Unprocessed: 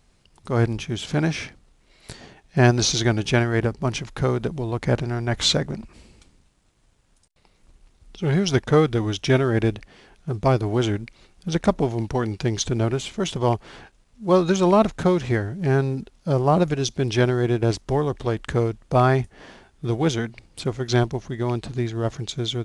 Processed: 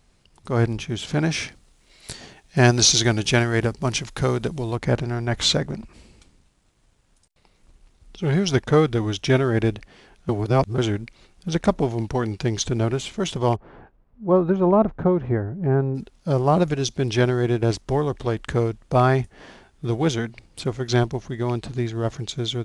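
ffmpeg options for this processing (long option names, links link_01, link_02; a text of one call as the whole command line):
ffmpeg -i in.wav -filter_complex "[0:a]asettb=1/sr,asplit=3[link_01][link_02][link_03];[link_01]atrim=end=1.314[link_04];[link_02]atrim=start=1.31:end=4.76,asetpts=PTS-STARTPTS,afade=type=in:duration=0.004:curve=qsin,afade=type=out:start_time=3.446:duration=0.004:curve=qsin,highshelf=frequency=3200:gain=8.5[link_05];[link_03]atrim=start=4.756[link_06];[link_04][link_05]acrossfade=duration=0.004:curve1=hsin:curve2=qsin[link_07];[link_07][link_06]acrossfade=duration=0.004:curve1=qsin:curve2=hsin,asplit=3[link_08][link_09][link_10];[link_08]afade=type=out:start_time=13.55:duration=0.02[link_11];[link_09]lowpass=1100,afade=type=in:start_time=13.55:duration=0.02,afade=type=out:start_time=15.94:duration=0.02[link_12];[link_10]afade=type=in:start_time=15.94:duration=0.02[link_13];[link_11][link_12][link_13]amix=inputs=3:normalize=0,asplit=3[link_14][link_15][link_16];[link_14]atrim=end=10.292[link_17];[link_15]atrim=start=10.288:end=10.782,asetpts=PTS-STARTPTS,areverse[link_18];[link_16]atrim=start=10.778[link_19];[link_17][link_18]acrossfade=duration=0.004:curve1=hsin:curve2=hsin[link_20];[link_20][link_19]acrossfade=duration=0.004:curve1=hsin:curve2=hsin" out.wav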